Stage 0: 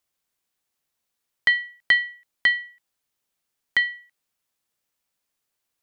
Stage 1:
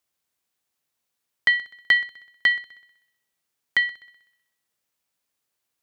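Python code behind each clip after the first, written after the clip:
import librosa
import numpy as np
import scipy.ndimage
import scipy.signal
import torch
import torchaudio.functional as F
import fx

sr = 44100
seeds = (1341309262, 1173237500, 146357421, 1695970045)

y = scipy.signal.sosfilt(scipy.signal.butter(2, 50.0, 'highpass', fs=sr, output='sos'), x)
y = fx.echo_heads(y, sr, ms=63, heads='first and second', feedback_pct=45, wet_db=-22.0)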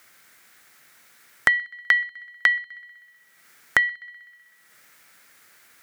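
y = scipy.signal.sosfilt(scipy.signal.butter(2, 100.0, 'highpass', fs=sr, output='sos'), x)
y = fx.band_shelf(y, sr, hz=1700.0, db=10.0, octaves=1.0)
y = fx.band_squash(y, sr, depth_pct=100)
y = F.gain(torch.from_numpy(y), -6.5).numpy()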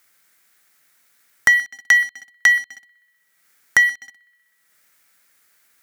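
y = fx.high_shelf(x, sr, hz=5200.0, db=7.0)
y = fx.leveller(y, sr, passes=3)
y = F.gain(torch.from_numpy(y), -4.0).numpy()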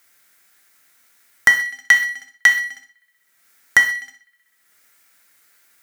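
y = fx.rev_gated(x, sr, seeds[0], gate_ms=160, shape='falling', drr_db=4.0)
y = F.gain(torch.from_numpy(y), 1.5).numpy()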